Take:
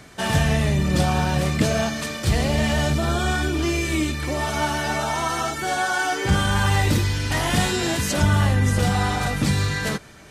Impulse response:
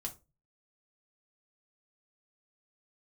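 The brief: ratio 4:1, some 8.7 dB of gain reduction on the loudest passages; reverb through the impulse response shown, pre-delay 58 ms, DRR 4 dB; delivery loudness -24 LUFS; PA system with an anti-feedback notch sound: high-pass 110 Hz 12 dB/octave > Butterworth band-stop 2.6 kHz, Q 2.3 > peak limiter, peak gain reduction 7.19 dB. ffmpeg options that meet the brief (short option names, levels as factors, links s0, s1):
-filter_complex "[0:a]acompressor=threshold=0.0631:ratio=4,asplit=2[s0][s1];[1:a]atrim=start_sample=2205,adelay=58[s2];[s1][s2]afir=irnorm=-1:irlink=0,volume=0.75[s3];[s0][s3]amix=inputs=2:normalize=0,highpass=110,asuperstop=centerf=2600:order=8:qfactor=2.3,volume=2,alimiter=limit=0.178:level=0:latency=1"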